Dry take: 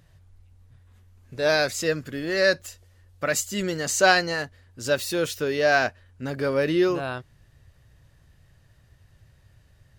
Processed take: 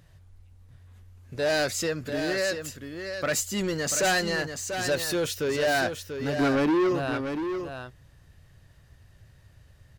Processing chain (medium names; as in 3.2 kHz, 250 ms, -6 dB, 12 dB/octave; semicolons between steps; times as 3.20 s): 1.85–2.56 s: compression 2:1, threshold -27 dBFS, peak gain reduction 7 dB; 6.37–6.90 s: small resonant body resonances 300/1400 Hz, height 16 dB -> 12 dB; saturation -21.5 dBFS, distortion -7 dB; delay 689 ms -7.5 dB; trim +1 dB